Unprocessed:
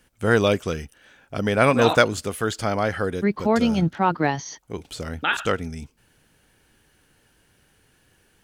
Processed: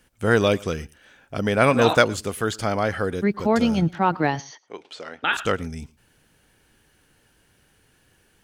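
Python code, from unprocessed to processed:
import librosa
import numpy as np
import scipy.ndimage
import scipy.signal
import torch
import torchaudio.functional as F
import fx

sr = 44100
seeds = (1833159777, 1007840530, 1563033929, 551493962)

p1 = fx.bandpass_edges(x, sr, low_hz=470.0, high_hz=4200.0, at=(4.41, 5.24))
y = p1 + fx.echo_single(p1, sr, ms=112, db=-24.0, dry=0)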